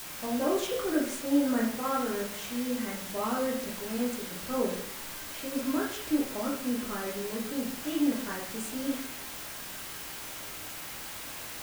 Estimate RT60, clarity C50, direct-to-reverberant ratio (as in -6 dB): 0.70 s, 4.0 dB, -3.0 dB